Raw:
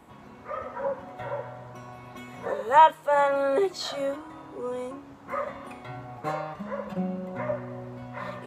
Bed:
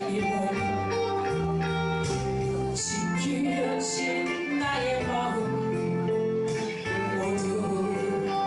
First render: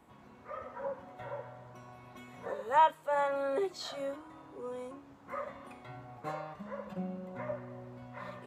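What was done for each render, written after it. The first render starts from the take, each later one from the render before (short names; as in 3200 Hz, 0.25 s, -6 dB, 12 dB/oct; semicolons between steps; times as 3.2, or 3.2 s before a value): gain -8.5 dB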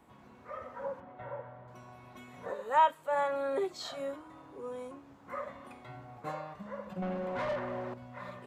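1–1.68 LPF 2300 Hz; 2.53–2.99 bell 110 Hz -11.5 dB 0.82 oct; 7.02–7.94 overdrive pedal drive 24 dB, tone 2100 Hz, clips at -26.5 dBFS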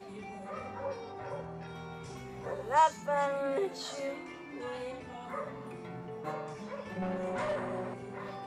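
add bed -17.5 dB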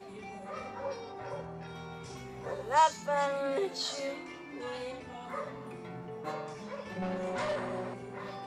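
notches 50/100/150/200 Hz; dynamic EQ 4700 Hz, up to +8 dB, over -58 dBFS, Q 1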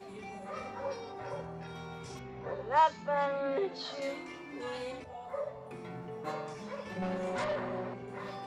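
2.19–4.02 air absorption 200 m; 5.04–5.71 EQ curve 100 Hz 0 dB, 210 Hz -11 dB, 310 Hz -16 dB, 580 Hz +6 dB, 1300 Hz -9 dB; 7.44–8.08 air absorption 130 m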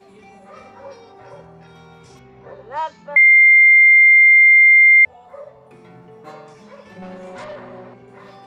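3.16–5.05 bleep 2100 Hz -6 dBFS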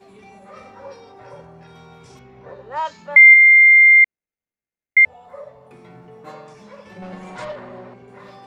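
2.85–3.34 high shelf 2000 Hz +6.5 dB; 4.04–4.97 median filter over 41 samples; 7.12–7.52 comb 6.4 ms, depth 89%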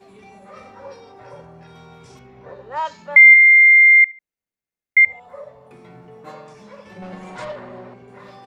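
feedback echo 73 ms, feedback 30%, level -23.5 dB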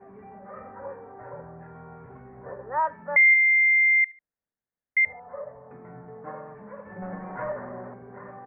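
elliptic low-pass 1800 Hz, stop band 60 dB; notch 360 Hz, Q 12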